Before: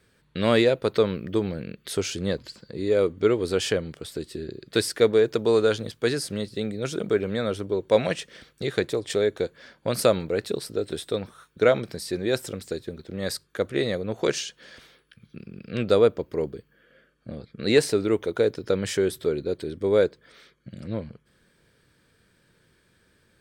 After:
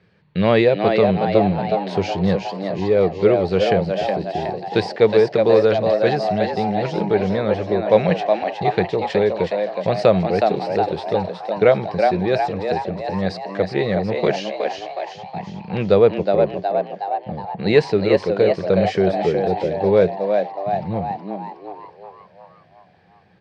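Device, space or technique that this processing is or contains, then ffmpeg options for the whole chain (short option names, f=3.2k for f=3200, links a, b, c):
frequency-shifting delay pedal into a guitar cabinet: -filter_complex "[0:a]asplit=8[a][b][c][d][e][f][g][h];[b]adelay=367,afreqshift=100,volume=-5dB[i];[c]adelay=734,afreqshift=200,volume=-10.5dB[j];[d]adelay=1101,afreqshift=300,volume=-16dB[k];[e]adelay=1468,afreqshift=400,volume=-21.5dB[l];[f]adelay=1835,afreqshift=500,volume=-27.1dB[m];[g]adelay=2202,afreqshift=600,volume=-32.6dB[n];[h]adelay=2569,afreqshift=700,volume=-38.1dB[o];[a][i][j][k][l][m][n][o]amix=inputs=8:normalize=0,highpass=91,equalizer=f=93:t=q:w=4:g=6,equalizer=f=180:t=q:w=4:g=10,equalizer=f=260:t=q:w=4:g=-9,equalizer=f=770:t=q:w=4:g=5,equalizer=f=1.4k:t=q:w=4:g=-6,equalizer=f=3.5k:t=q:w=4:g=-7,lowpass=f=4.2k:w=0.5412,lowpass=f=4.2k:w=1.3066,volume=5dB"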